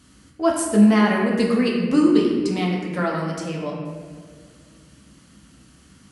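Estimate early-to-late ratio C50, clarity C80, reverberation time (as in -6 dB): 2.0 dB, 3.5 dB, 1.9 s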